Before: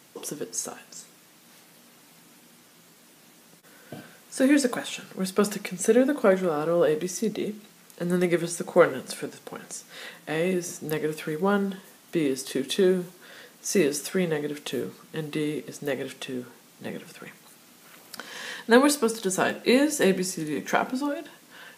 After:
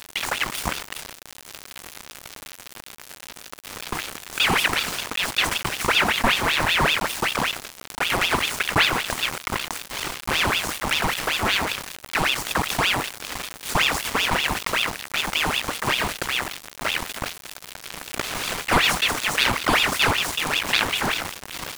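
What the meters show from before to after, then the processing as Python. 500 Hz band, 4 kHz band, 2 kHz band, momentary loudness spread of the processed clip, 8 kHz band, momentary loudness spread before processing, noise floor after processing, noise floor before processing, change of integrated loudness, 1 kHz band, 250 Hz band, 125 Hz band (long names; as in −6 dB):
−7.0 dB, +14.5 dB, +11.0 dB, 19 LU, +4.5 dB, 19 LU, −45 dBFS, −55 dBFS, +3.5 dB, +9.0 dB, −6.5 dB, +1.5 dB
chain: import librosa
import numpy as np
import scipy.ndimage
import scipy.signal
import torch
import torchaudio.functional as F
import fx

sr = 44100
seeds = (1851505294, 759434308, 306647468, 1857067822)

y = fx.bin_compress(x, sr, power=0.4)
y = np.where(np.abs(y) >= 10.0 ** (-20.0 / 20.0), y, 0.0)
y = fx.ring_lfo(y, sr, carrier_hz=1800.0, swing_pct=75, hz=5.2)
y = y * 10.0 ** (-2.0 / 20.0)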